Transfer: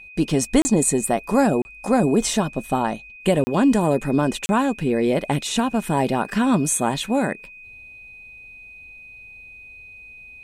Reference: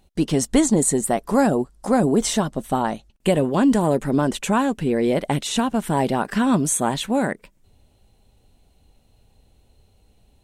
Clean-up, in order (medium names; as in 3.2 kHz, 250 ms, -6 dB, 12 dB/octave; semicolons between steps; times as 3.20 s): band-stop 2.5 kHz, Q 30; interpolate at 0.62/1.62/3.44/4.46 s, 30 ms